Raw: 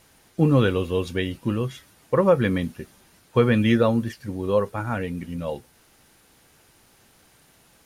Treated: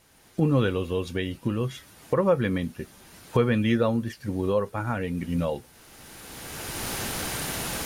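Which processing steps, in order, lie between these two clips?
camcorder AGC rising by 19 dB per second
level −4 dB

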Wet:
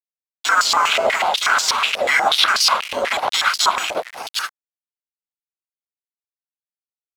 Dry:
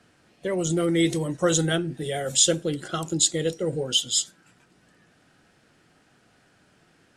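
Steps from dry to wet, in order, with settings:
one-sided soft clipper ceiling −19.5 dBFS
in parallel at −11 dB: sine wavefolder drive 16 dB, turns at −6.5 dBFS
on the sum: multiband delay without the direct sound lows, highs 250 ms, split 2,600 Hz
bad sample-rate conversion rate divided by 6×, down none, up hold
gate on every frequency bin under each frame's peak −20 dB weak
notch filter 1,800 Hz, Q 5.2
bit-depth reduction 6 bits, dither none
boost into a limiter +21.5 dB
band-pass on a step sequencer 8.2 Hz 580–4,800 Hz
level +6 dB

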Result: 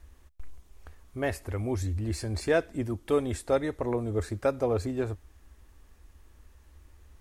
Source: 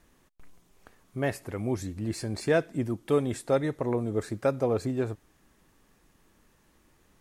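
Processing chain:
low shelf with overshoot 100 Hz +11.5 dB, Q 3

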